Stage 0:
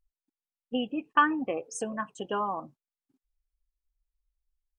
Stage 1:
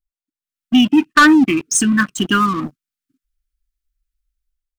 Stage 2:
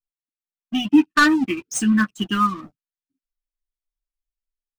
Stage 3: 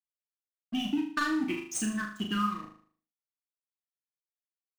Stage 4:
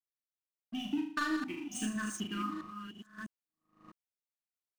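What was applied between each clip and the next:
elliptic band-stop filter 330–1,300 Hz, stop band 40 dB; automatic gain control gain up to 12.5 dB; leveller curve on the samples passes 3
running median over 3 samples; multi-voice chorus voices 2, 0.49 Hz, delay 10 ms, depth 1.2 ms; expander for the loud parts 1.5 to 1, over −34 dBFS
downward compressor, threshold −21 dBFS, peak gain reduction 11.5 dB; dead-zone distortion −42 dBFS; on a send: flutter between parallel walls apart 6.6 metres, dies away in 0.5 s; on the sum: level −6.5 dB
delay that plays each chunk backwards 653 ms, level −5.5 dB; sample-and-hold tremolo 2.2 Hz; level −4 dB

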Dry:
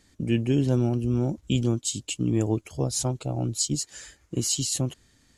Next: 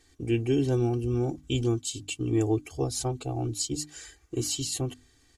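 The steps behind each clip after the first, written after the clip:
mains-hum notches 50/100/150/200/250/300 Hz
comb filter 2.6 ms, depth 83%
dynamic equaliser 6,800 Hz, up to −5 dB, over −36 dBFS, Q 0.97
level −3 dB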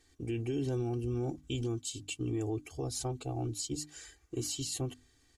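brickwall limiter −21.5 dBFS, peak gain reduction 6.5 dB
level −5 dB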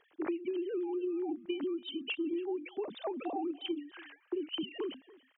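three sine waves on the formant tracks
downward compressor 10 to 1, threshold −41 dBFS, peak gain reduction 15 dB
single-tap delay 285 ms −21.5 dB
level +8.5 dB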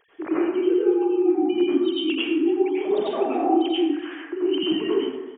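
dense smooth reverb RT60 1.1 s, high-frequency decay 0.45×, pre-delay 75 ms, DRR −8.5 dB
downsampling to 8,000 Hz
level +4.5 dB

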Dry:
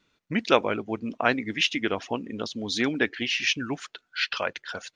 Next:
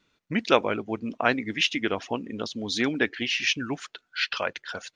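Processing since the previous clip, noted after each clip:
no processing that can be heard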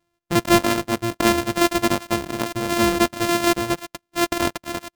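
samples sorted by size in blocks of 128 samples
leveller curve on the samples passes 2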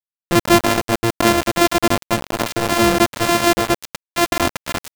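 in parallel at +0.5 dB: brickwall limiter −14.5 dBFS, peak gain reduction 10 dB
on the sum: centre clipping without the shift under −17 dBFS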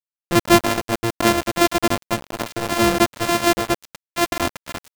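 expander for the loud parts 1.5 to 1, over −34 dBFS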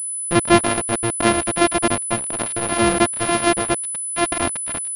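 switching amplifier with a slow clock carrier 10,000 Hz

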